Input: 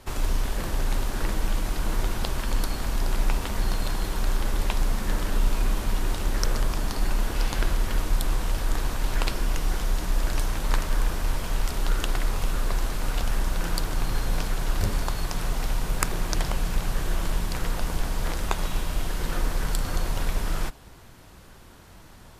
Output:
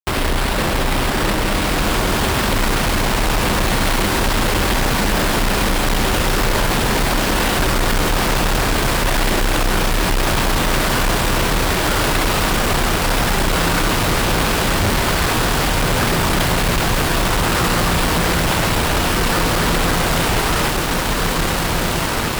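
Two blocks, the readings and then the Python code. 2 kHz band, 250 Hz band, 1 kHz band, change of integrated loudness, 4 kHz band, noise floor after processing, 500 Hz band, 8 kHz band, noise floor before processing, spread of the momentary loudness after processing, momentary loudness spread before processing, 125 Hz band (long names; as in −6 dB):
+17.0 dB, +15.0 dB, +16.0 dB, +12.0 dB, +16.0 dB, −19 dBFS, +16.0 dB, +14.0 dB, −48 dBFS, 2 LU, 3 LU, +10.0 dB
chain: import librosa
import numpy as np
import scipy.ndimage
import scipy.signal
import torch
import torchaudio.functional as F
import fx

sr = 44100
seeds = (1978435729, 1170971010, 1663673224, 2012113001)

y = fx.highpass(x, sr, hz=110.0, slope=6)
y = fx.sample_hold(y, sr, seeds[0], rate_hz=6400.0, jitter_pct=20)
y = fx.echo_diffused(y, sr, ms=1692, feedback_pct=63, wet_db=-3.5)
y = fx.fuzz(y, sr, gain_db=37.0, gate_db=-38.0)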